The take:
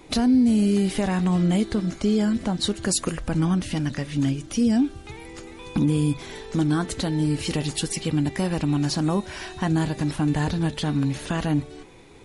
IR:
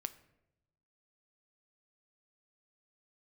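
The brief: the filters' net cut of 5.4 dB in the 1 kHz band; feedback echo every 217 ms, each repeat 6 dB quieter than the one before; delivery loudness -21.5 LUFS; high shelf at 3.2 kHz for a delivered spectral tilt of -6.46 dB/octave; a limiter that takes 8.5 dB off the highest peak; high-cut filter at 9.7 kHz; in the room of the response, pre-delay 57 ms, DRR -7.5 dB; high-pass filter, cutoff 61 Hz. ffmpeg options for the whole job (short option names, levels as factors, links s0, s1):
-filter_complex "[0:a]highpass=61,lowpass=9700,equalizer=f=1000:t=o:g=-7,highshelf=f=3200:g=-4,alimiter=limit=0.0891:level=0:latency=1,aecho=1:1:217|434|651|868|1085|1302:0.501|0.251|0.125|0.0626|0.0313|0.0157,asplit=2[s0][s1];[1:a]atrim=start_sample=2205,adelay=57[s2];[s1][s2]afir=irnorm=-1:irlink=0,volume=2.99[s3];[s0][s3]amix=inputs=2:normalize=0,volume=0.891"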